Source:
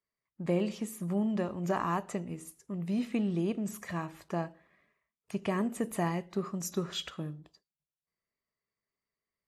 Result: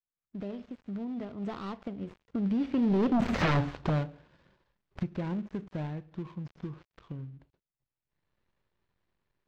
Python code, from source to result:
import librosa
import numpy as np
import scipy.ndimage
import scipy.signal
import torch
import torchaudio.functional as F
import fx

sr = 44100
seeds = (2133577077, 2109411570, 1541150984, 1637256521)

p1 = fx.dead_time(x, sr, dead_ms=0.21)
p2 = fx.recorder_agc(p1, sr, target_db=-23.0, rise_db_per_s=24.0, max_gain_db=30)
p3 = fx.doppler_pass(p2, sr, speed_mps=44, closest_m=3.8, pass_at_s=3.41)
p4 = fx.low_shelf(p3, sr, hz=150.0, db=10.5)
p5 = fx.fold_sine(p4, sr, drive_db=19, ceiling_db=-19.0)
p6 = p4 + (p5 * librosa.db_to_amplitude(-3.5))
y = fx.air_absorb(p6, sr, metres=190.0)